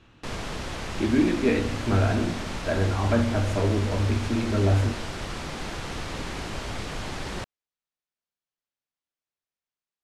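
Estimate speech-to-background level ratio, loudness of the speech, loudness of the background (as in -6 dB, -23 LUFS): 9.0 dB, -25.0 LUFS, -34.0 LUFS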